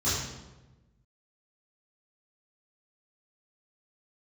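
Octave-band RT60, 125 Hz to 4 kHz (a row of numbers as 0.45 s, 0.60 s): 1.6 s, 1.4 s, 1.2 s, 1.0 s, 0.85 s, 0.75 s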